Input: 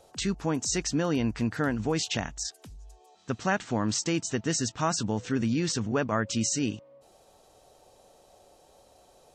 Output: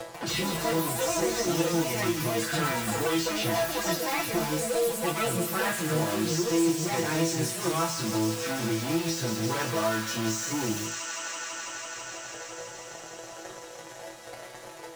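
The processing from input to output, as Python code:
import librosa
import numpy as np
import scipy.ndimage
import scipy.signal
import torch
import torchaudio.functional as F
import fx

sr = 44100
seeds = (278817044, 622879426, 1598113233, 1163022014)

p1 = fx.high_shelf(x, sr, hz=2100.0, db=-8.5)
p2 = fx.stretch_vocoder_free(p1, sr, factor=1.6)
p3 = fx.leveller(p2, sr, passes=3)
p4 = fx.peak_eq(p3, sr, hz=180.0, db=-10.0, octaves=0.32)
p5 = fx.resonator_bank(p4, sr, root=40, chord='sus4', decay_s=0.33)
p6 = p5 + fx.echo_wet_highpass(p5, sr, ms=165, feedback_pct=80, hz=1700.0, wet_db=-7, dry=0)
p7 = fx.echo_pitch(p6, sr, ms=142, semitones=6, count=3, db_per_echo=-3.0)
p8 = (np.mod(10.0 ** (40.5 / 20.0) * p7 + 1.0, 2.0) - 1.0) / 10.0 ** (40.5 / 20.0)
p9 = p7 + F.gain(torch.from_numpy(p8), -5.0).numpy()
p10 = fx.highpass(p9, sr, hz=90.0, slope=6)
p11 = p10 + 0.88 * np.pad(p10, (int(6.0 * sr / 1000.0), 0))[:len(p10)]
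p12 = fx.band_squash(p11, sr, depth_pct=70)
y = F.gain(torch.from_numpy(p12), 6.0).numpy()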